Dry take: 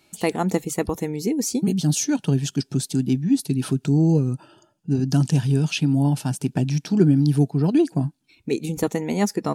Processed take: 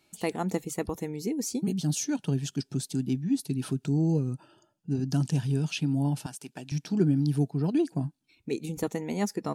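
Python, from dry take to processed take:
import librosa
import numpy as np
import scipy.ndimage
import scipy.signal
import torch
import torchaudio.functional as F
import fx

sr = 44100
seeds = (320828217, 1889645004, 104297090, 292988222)

y = fx.highpass(x, sr, hz=980.0, slope=6, at=(6.26, 6.72))
y = y * librosa.db_to_amplitude(-7.5)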